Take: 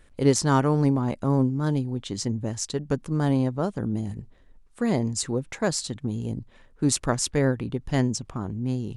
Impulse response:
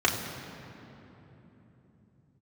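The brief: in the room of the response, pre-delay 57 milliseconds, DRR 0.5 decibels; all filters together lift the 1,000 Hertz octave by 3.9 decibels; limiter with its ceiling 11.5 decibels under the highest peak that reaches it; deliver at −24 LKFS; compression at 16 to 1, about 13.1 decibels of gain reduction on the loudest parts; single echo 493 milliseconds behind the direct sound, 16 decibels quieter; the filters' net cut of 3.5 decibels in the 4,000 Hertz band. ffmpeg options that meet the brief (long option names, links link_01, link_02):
-filter_complex "[0:a]equalizer=frequency=1000:width_type=o:gain=5,equalizer=frequency=4000:width_type=o:gain=-5,acompressor=threshold=-26dB:ratio=16,alimiter=level_in=1dB:limit=-24dB:level=0:latency=1,volume=-1dB,aecho=1:1:493:0.158,asplit=2[link_01][link_02];[1:a]atrim=start_sample=2205,adelay=57[link_03];[link_02][link_03]afir=irnorm=-1:irlink=0,volume=-15dB[link_04];[link_01][link_04]amix=inputs=2:normalize=0,volume=7.5dB"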